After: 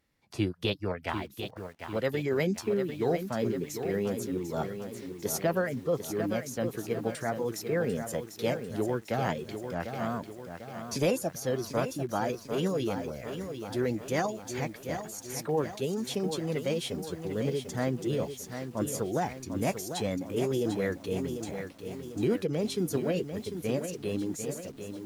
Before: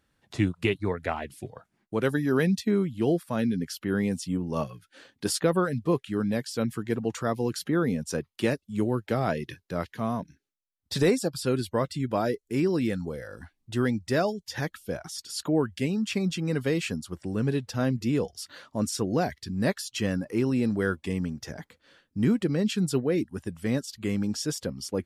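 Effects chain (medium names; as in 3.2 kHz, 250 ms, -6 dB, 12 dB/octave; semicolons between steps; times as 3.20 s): fade out at the end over 0.89 s; formant shift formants +4 st; bit-crushed delay 746 ms, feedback 55%, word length 8-bit, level -8 dB; trim -4 dB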